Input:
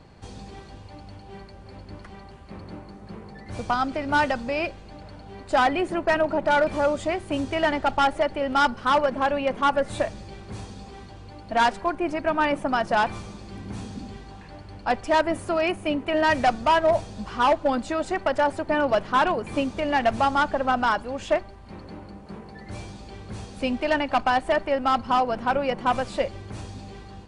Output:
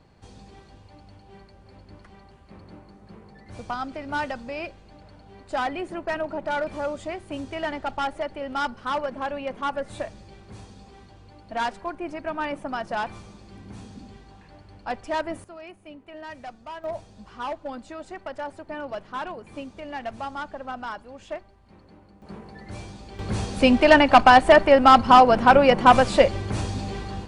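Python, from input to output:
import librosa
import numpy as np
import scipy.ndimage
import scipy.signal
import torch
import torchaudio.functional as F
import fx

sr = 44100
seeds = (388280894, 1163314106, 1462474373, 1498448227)

y = fx.gain(x, sr, db=fx.steps((0.0, -6.5), (15.44, -18.5), (16.84, -11.5), (22.22, -1.0), (23.19, 9.0)))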